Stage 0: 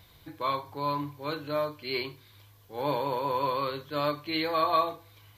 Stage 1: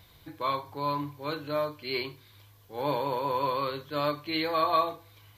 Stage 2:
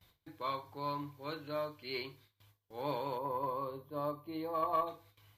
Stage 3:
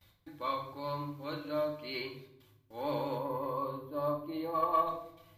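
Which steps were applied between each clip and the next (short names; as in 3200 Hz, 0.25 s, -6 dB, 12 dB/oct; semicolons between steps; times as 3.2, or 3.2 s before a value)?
nothing audible
spectral gain 3.17–4.87, 1200–9400 Hz -15 dB; gate with hold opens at -45 dBFS; added harmonics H 2 -26 dB, 3 -27 dB, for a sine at -14 dBFS; gain -7 dB
shoebox room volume 2200 m³, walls furnished, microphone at 2.4 m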